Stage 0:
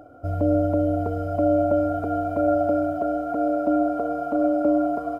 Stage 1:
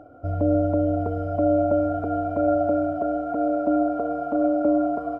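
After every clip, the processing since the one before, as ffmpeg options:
ffmpeg -i in.wav -af "lowpass=frequency=2100:poles=1" out.wav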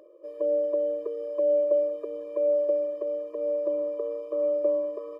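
ffmpeg -i in.wav -af "afftfilt=real='re*eq(mod(floor(b*sr/1024/320),2),1)':imag='im*eq(mod(floor(b*sr/1024/320),2),1)':win_size=1024:overlap=0.75" out.wav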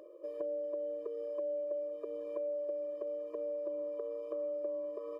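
ffmpeg -i in.wav -af "acompressor=threshold=-38dB:ratio=4" out.wav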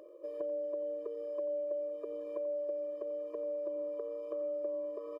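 ffmpeg -i in.wav -af "aecho=1:1:89:0.168" out.wav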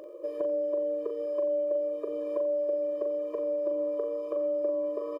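ffmpeg -i in.wav -filter_complex "[0:a]asplit=2[link_01][link_02];[link_02]adelay=40,volume=-7dB[link_03];[link_01][link_03]amix=inputs=2:normalize=0,volume=8dB" out.wav

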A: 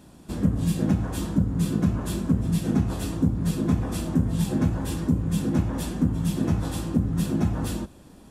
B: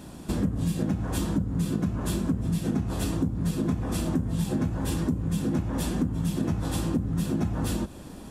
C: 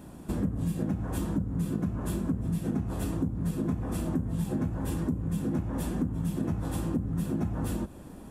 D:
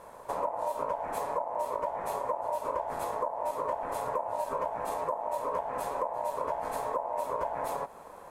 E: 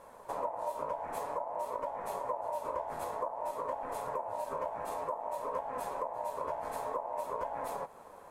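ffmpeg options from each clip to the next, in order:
ffmpeg -i in.wav -af "acompressor=threshold=-31dB:ratio=6,volume=7dB" out.wav
ffmpeg -i in.wav -af "equalizer=frequency=4500:width=0.72:gain=-8.5,volume=-3dB" out.wav
ffmpeg -i in.wav -af "aeval=exprs='val(0)*sin(2*PI*770*n/s)':channel_layout=same" out.wav
ffmpeg -i in.wav -af "flanger=delay=3.6:depth=9.9:regen=72:speed=0.53:shape=sinusoidal" out.wav

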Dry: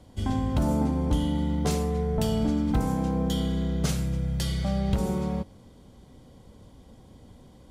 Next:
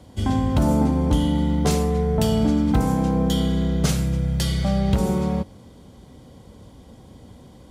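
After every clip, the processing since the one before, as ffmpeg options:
ffmpeg -i in.wav -af "highpass=46,volume=6dB" out.wav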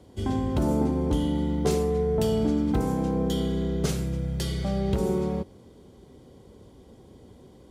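ffmpeg -i in.wav -af "equalizer=frequency=390:width_type=o:width=0.53:gain=10.5,volume=-7dB" out.wav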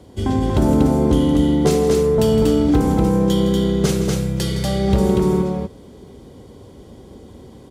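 ffmpeg -i in.wav -af "aecho=1:1:163.3|239.1:0.251|0.708,volume=7.5dB" out.wav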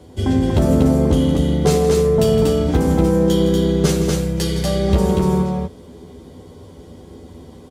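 ffmpeg -i in.wav -filter_complex "[0:a]asplit=2[link_01][link_02];[link_02]adelay=12,volume=-3.5dB[link_03];[link_01][link_03]amix=inputs=2:normalize=0" out.wav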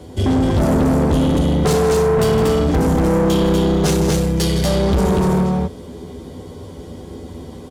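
ffmpeg -i in.wav -af "asoftclip=type=tanh:threshold=-18dB,volume=6dB" out.wav

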